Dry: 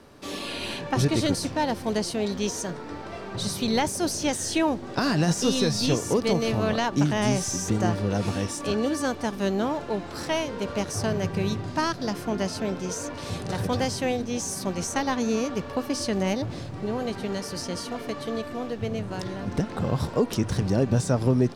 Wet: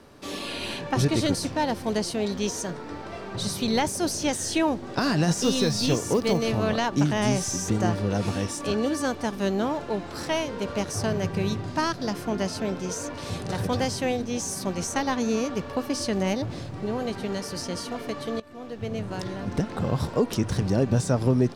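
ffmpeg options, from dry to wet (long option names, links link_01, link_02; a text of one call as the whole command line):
ffmpeg -i in.wav -filter_complex "[0:a]asettb=1/sr,asplit=3[link_01][link_02][link_03];[link_01]atrim=end=5.414[link_04];[link_02]atrim=start=5.41:end=6.38,asetpts=PTS-STARTPTS,afade=type=in:duration=0.004:curve=qsin,afade=type=out:start_time=0.966:duration=0.004:curve=qsin,acrusher=bits=8:mode=log:mix=0:aa=0.000001[link_05];[link_03]atrim=start=6.376[link_06];[link_04][link_05]acrossfade=duration=0.004:curve1=hsin:curve2=qsin[link_07];[link_07][link_06]acrossfade=duration=0.004:curve1=qsin:curve2=hsin,asplit=2[link_08][link_09];[link_08]atrim=end=18.4,asetpts=PTS-STARTPTS,afade=type=out:start_time=18.396:duration=0.004:curve=hsin:silence=0.11885[link_10];[link_09]atrim=start=18.4,asetpts=PTS-STARTPTS,afade=type=in:duration=0.63:silence=0.11885[link_11];[link_10][link_11]concat=n=2:v=0:a=1" out.wav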